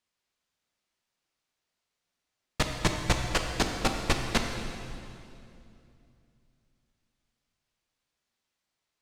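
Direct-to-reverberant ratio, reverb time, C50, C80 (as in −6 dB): 3.0 dB, 2.7 s, 4.5 dB, 5.0 dB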